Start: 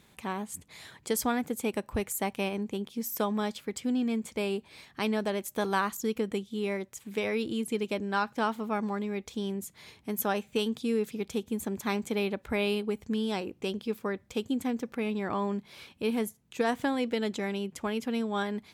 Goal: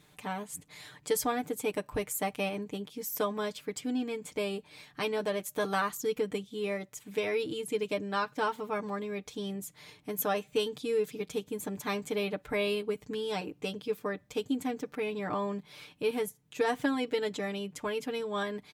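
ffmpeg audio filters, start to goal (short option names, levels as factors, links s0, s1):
-af "aecho=1:1:6.7:0.83,volume=0.708"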